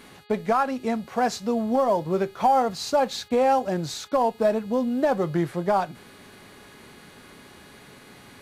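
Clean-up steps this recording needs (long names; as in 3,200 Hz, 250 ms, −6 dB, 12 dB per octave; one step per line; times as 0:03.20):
hum removal 416.8 Hz, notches 11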